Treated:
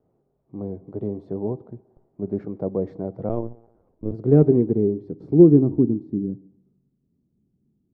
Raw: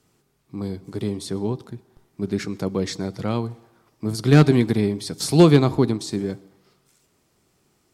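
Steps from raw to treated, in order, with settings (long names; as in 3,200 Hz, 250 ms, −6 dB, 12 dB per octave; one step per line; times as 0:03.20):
low-pass filter sweep 620 Hz → 220 Hz, 0:03.61–0:06.80
0:03.29–0:04.12: linear-prediction vocoder at 8 kHz pitch kept
level −4 dB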